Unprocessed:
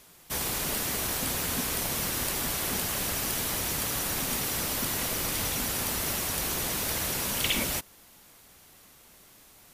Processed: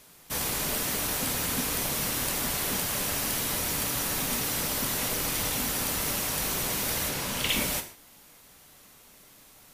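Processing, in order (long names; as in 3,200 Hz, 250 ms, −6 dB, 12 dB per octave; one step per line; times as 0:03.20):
0:07.09–0:07.49: high-shelf EQ 7,800 Hz −6.5 dB
reverb whose tail is shaped and stops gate 180 ms falling, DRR 6 dB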